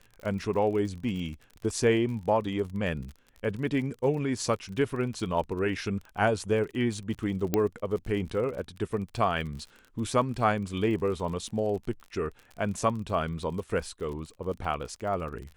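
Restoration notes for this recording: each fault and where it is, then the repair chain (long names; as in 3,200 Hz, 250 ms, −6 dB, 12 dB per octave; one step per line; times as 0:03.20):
surface crackle 37 per second −37 dBFS
0:07.54: click −11 dBFS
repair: click removal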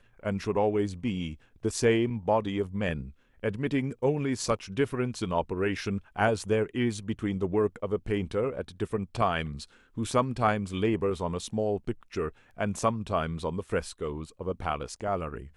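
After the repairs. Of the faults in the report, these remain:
none of them is left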